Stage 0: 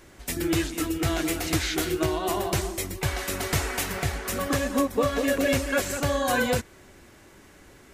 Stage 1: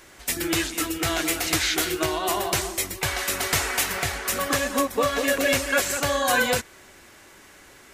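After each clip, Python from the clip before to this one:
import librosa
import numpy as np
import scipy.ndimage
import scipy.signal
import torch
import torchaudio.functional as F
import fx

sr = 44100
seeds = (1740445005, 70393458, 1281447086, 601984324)

y = fx.low_shelf(x, sr, hz=480.0, db=-11.5)
y = y * 10.0 ** (6.0 / 20.0)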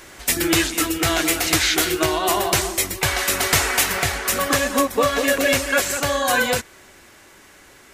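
y = fx.rider(x, sr, range_db=3, speed_s=2.0)
y = y * 10.0 ** (4.5 / 20.0)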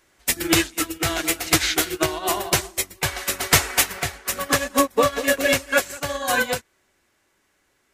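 y = fx.upward_expand(x, sr, threshold_db=-29.0, expansion=2.5)
y = y * 10.0 ** (3.5 / 20.0)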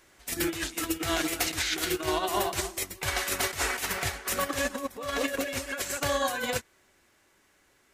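y = fx.over_compress(x, sr, threshold_db=-27.0, ratio=-1.0)
y = y * 10.0 ** (-3.0 / 20.0)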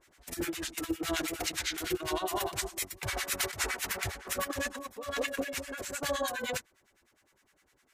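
y = fx.harmonic_tremolo(x, sr, hz=9.8, depth_pct=100, crossover_hz=1000.0)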